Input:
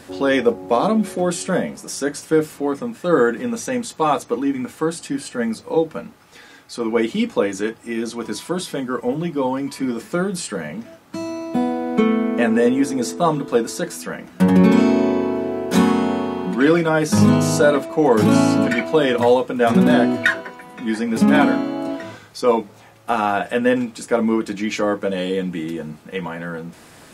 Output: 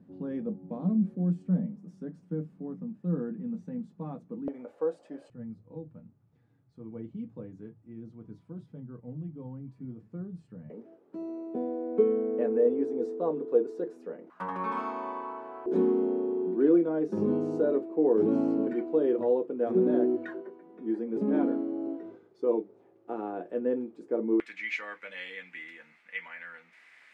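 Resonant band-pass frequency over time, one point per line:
resonant band-pass, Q 5.6
180 Hz
from 0:04.48 560 Hz
from 0:05.30 120 Hz
from 0:10.70 410 Hz
from 0:14.30 1,100 Hz
from 0:15.66 370 Hz
from 0:24.40 2,100 Hz

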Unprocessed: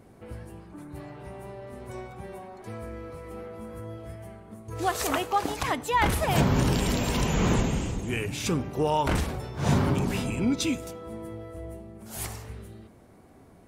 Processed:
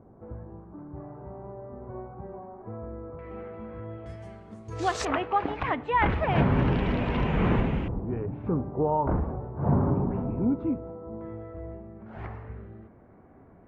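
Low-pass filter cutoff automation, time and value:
low-pass filter 24 dB per octave
1,200 Hz
from 0:03.19 2,600 Hz
from 0:04.06 6,900 Hz
from 0:05.05 2,600 Hz
from 0:07.88 1,100 Hz
from 0:11.21 1,900 Hz

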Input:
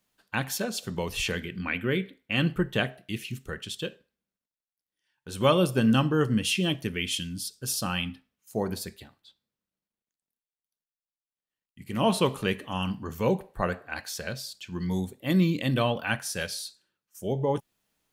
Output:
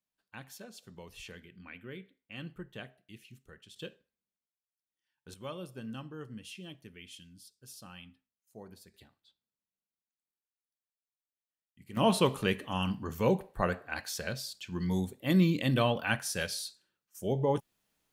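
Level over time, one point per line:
−18 dB
from 0:03.76 −9.5 dB
from 0:05.34 −20 dB
from 0:08.94 −11 dB
from 0:11.97 −2 dB

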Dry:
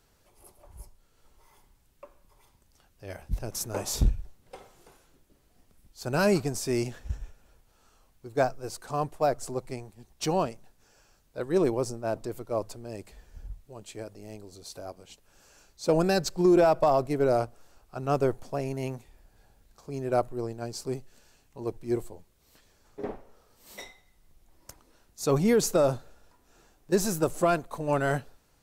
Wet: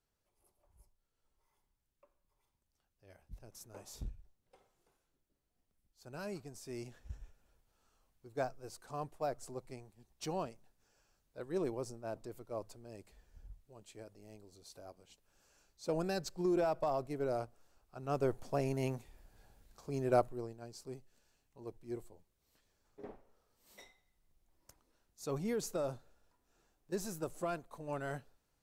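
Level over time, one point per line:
0:06.45 −20 dB
0:07.20 −12 dB
0:17.99 −12 dB
0:18.54 −3 dB
0:20.14 −3 dB
0:20.60 −14 dB

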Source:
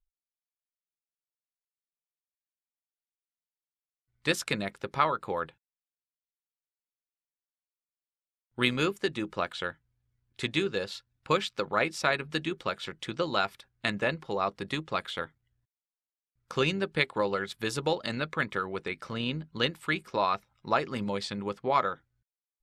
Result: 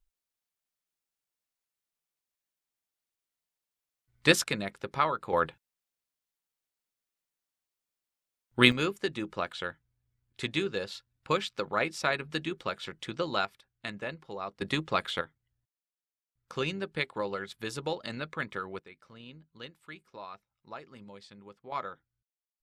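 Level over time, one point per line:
+5.5 dB
from 0:04.44 −1.5 dB
from 0:05.33 +6 dB
from 0:08.72 −2 dB
from 0:13.45 −8.5 dB
from 0:14.61 +2.5 dB
from 0:15.21 −5 dB
from 0:18.79 −17 dB
from 0:21.72 −9.5 dB

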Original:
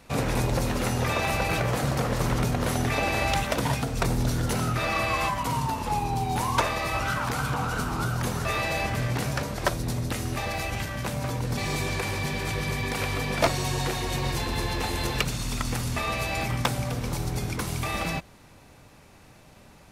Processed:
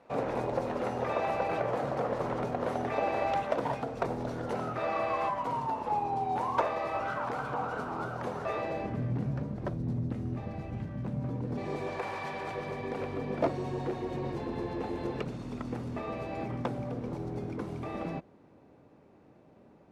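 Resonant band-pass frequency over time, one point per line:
resonant band-pass, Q 1.1
0:08.48 600 Hz
0:09.14 190 Hz
0:11.21 190 Hz
0:12.20 940 Hz
0:13.14 350 Hz

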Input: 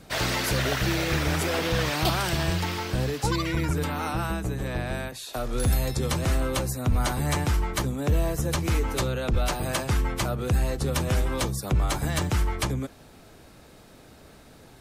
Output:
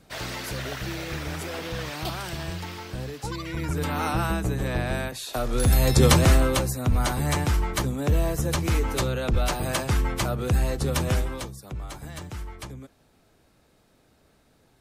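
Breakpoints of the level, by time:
0:03.42 −7 dB
0:03.99 +3 dB
0:05.70 +3 dB
0:06.04 +11 dB
0:06.73 +1 dB
0:11.13 +1 dB
0:11.56 −11.5 dB

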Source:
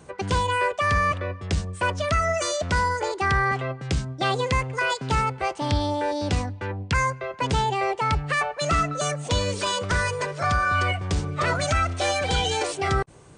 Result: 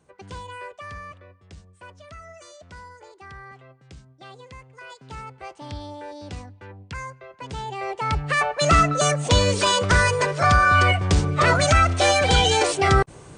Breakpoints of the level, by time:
0:00.70 −14 dB
0:01.40 −20 dB
0:04.62 −20 dB
0:05.48 −11.5 dB
0:07.47 −11.5 dB
0:08.12 −0.5 dB
0:08.67 +6 dB

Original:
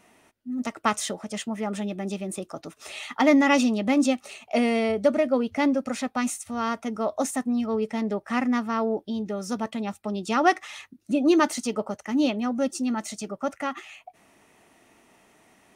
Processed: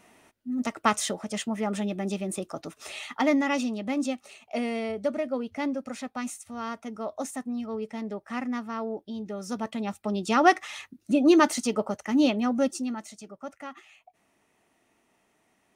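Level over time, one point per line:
0:02.82 +0.5 dB
0:03.51 −7 dB
0:09.02 −7 dB
0:10.13 +1 dB
0:12.62 +1 dB
0:13.13 −10.5 dB

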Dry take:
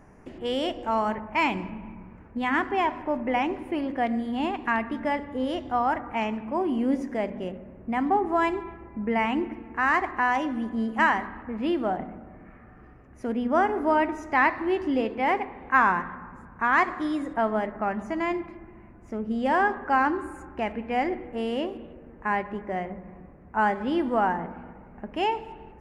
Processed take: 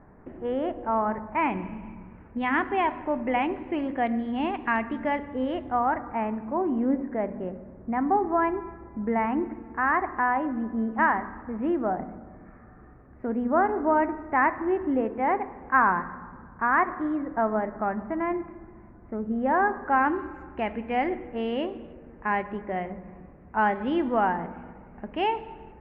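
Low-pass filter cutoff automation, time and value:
low-pass filter 24 dB per octave
0:01.31 1,800 Hz
0:01.87 3,100 Hz
0:05.26 3,100 Hz
0:06.16 1,800 Hz
0:19.82 1,800 Hz
0:20.24 3,400 Hz

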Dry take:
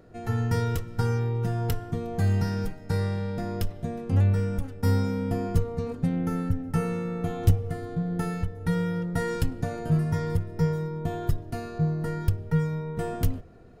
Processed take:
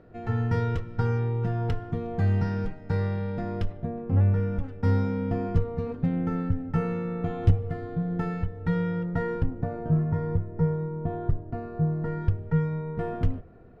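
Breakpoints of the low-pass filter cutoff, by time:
0:03.69 2,800 Hz
0:03.93 1,200 Hz
0:04.68 2,700 Hz
0:09.03 2,700 Hz
0:09.45 1,200 Hz
0:11.69 1,200 Hz
0:12.28 2,100 Hz

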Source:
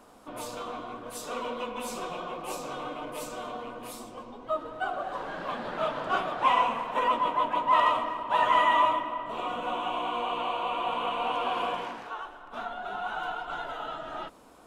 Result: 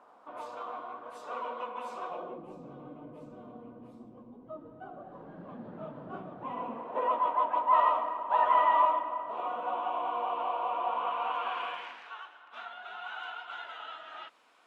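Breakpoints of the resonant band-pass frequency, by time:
resonant band-pass, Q 1.2
0:02.07 950 Hz
0:02.50 170 Hz
0:06.48 170 Hz
0:07.21 810 Hz
0:10.86 810 Hz
0:11.94 2,400 Hz

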